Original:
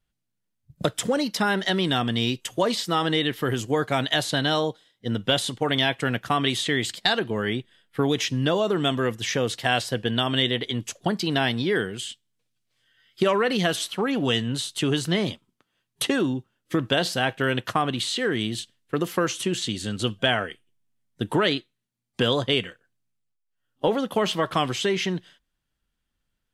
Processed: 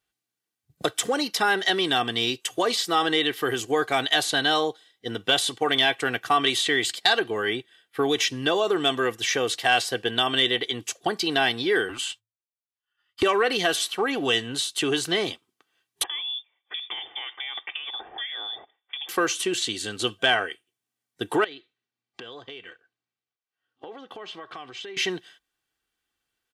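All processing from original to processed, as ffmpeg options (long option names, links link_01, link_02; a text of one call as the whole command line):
ffmpeg -i in.wav -filter_complex "[0:a]asettb=1/sr,asplit=3[link_01][link_02][link_03];[link_01]atrim=end=11.894[link_04];[link_02]atrim=start=11.89:end=13.23,asetpts=PTS-STARTPTS,afade=type=in:duration=0.004:curve=qsin,afade=type=out:start_time=1.336:duration=0.004:curve=qsin,agate=range=-33dB:threshold=-52dB:ratio=3:release=100:detection=peak,equalizer=frequency=1100:width=1.5:gain=12,afreqshift=-110[link_05];[link_03]atrim=start=13.226[link_06];[link_04][link_05]acrossfade=duration=0.004:curve1=hsin:curve2=qsin[link_07];[link_07][link_06]acrossfade=duration=0.004:curve1=qsin:curve2=hsin,asettb=1/sr,asplit=3[link_08][link_09][link_10];[link_08]atrim=end=16.034[link_11];[link_09]atrim=start=16.03:end=19.09,asetpts=PTS-STARTPTS,afade=type=in:duration=0.004:curve=qsin,afade=type=out:start_time=3.056:duration=0.004:curve=qsin,highpass=200,acompressor=threshold=-32dB:ratio=8:attack=3.2:release=140:knee=1:detection=peak,lowpass=frequency=3100:width_type=q:width=0.5098,lowpass=frequency=3100:width_type=q:width=0.6013,lowpass=frequency=3100:width_type=q:width=0.9,lowpass=frequency=3100:width_type=q:width=2.563,afreqshift=-3700[link_12];[link_10]atrim=start=19.086[link_13];[link_11][link_12]acrossfade=duration=0.004:curve1=hsin:curve2=qsin[link_14];[link_14][link_13]acrossfade=duration=0.004:curve1=qsin:curve2=hsin,asettb=1/sr,asplit=3[link_15][link_16][link_17];[link_15]atrim=end=21.444[link_18];[link_16]atrim=start=21.44:end=24.97,asetpts=PTS-STARTPTS,afade=type=in:duration=0.004:curve=qsin,afade=type=out:start_time=3.526:duration=0.004:curve=qsin,lowpass=4200,acompressor=threshold=-37dB:ratio=8:attack=3.2:release=140:knee=1:detection=peak[link_19];[link_17]atrim=start=24.966[link_20];[link_18][link_19]acrossfade=duration=0.004:curve1=hsin:curve2=qsin[link_21];[link_21][link_20]acrossfade=duration=0.004:curve1=qsin:curve2=hsin,highpass=frequency=490:poles=1,aecho=1:1:2.6:0.48,acontrast=59,volume=-4dB" out.wav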